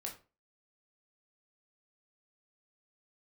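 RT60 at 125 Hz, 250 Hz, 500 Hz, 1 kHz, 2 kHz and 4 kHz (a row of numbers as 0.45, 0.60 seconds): 0.35, 0.35, 0.35, 0.30, 0.30, 0.25 seconds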